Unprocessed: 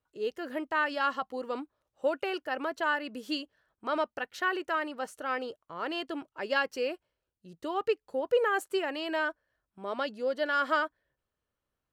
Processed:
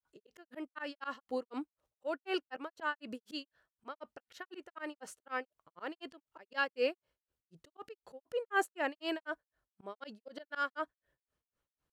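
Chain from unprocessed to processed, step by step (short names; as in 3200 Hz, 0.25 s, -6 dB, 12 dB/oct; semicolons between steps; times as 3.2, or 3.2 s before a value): grains 0.205 s, grains 4/s, spray 34 ms, pitch spread up and down by 0 st; auto swell 0.138 s; gain +1.5 dB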